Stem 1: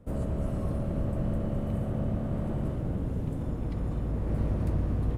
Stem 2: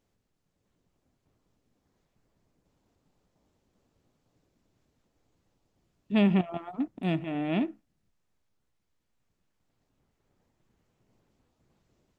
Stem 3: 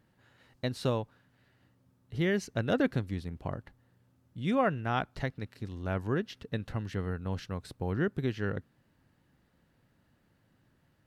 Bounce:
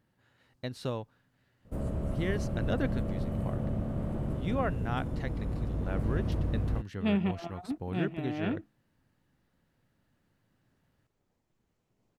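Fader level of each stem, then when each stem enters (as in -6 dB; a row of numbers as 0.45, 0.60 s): -2.5, -5.0, -4.5 dB; 1.65, 0.90, 0.00 s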